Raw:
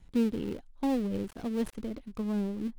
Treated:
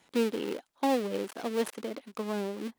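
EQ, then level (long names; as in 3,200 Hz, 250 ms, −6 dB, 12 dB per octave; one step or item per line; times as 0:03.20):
high-pass filter 450 Hz 12 dB per octave
+8.0 dB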